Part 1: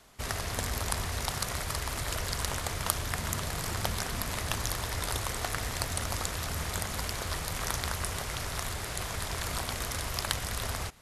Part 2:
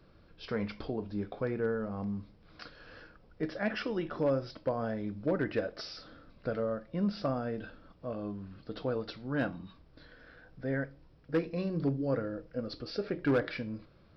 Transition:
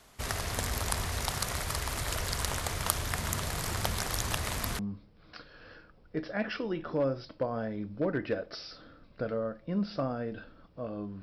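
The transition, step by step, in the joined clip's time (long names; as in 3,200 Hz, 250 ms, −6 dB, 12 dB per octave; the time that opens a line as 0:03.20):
part 1
0:04.07–0:04.79: reverse
0:04.79: continue with part 2 from 0:02.05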